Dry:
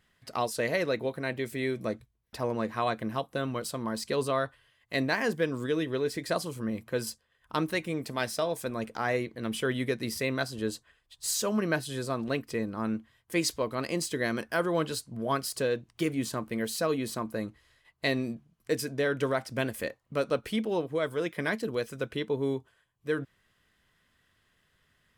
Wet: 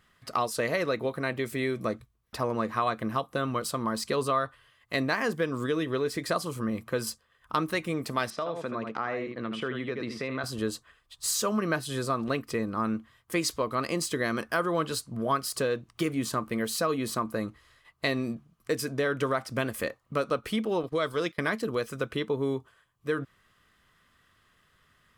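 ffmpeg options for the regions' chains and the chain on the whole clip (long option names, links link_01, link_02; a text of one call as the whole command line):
ffmpeg -i in.wav -filter_complex "[0:a]asettb=1/sr,asplit=3[link_01][link_02][link_03];[link_01]atrim=end=8.304[link_04];[link_02]atrim=start=8.3:end=10.44,asetpts=PTS-STARTPTS,afade=type=in:duration=0.004:curve=qsin,afade=type=out:start_time=2.136:duration=0.004:curve=qsin,aecho=1:1:77:0.376,atrim=end_sample=94374,acompressor=threshold=-33dB:ratio=3:attack=3.2:release=140:knee=1:detection=peak,highpass=130,lowpass=3300[link_05];[link_03]atrim=start=10.436[link_06];[link_04][link_05]acrossfade=duration=0.004:curve1=hsin:curve2=qsin[link_07];[link_07][link_06]acrossfade=duration=0.004:curve1=qsin:curve2=hsin,asettb=1/sr,asplit=3[link_08][link_09][link_10];[link_08]atrim=end=20.834[link_11];[link_09]atrim=start=20.83:end=21.4,asetpts=PTS-STARTPTS,afade=type=in:duration=0.004:curve=qsin,afade=type=out:start_time=0.566:duration=0.004:curve=qsin,agate=range=-19dB:threshold=-43dB:ratio=16:release=100:detection=peak,equalizer=frequency=4500:width_type=o:width=0.84:gain=10.5[link_12];[link_10]atrim=start=21.396[link_13];[link_11][link_12]acrossfade=duration=0.004:curve1=hsin:curve2=qsin[link_14];[link_14][link_13]acrossfade=duration=0.004:curve1=qsin:curve2=hsin,equalizer=frequency=1200:width_type=o:width=0.29:gain=9.5,acompressor=threshold=-30dB:ratio=2,volume=3.5dB" out.wav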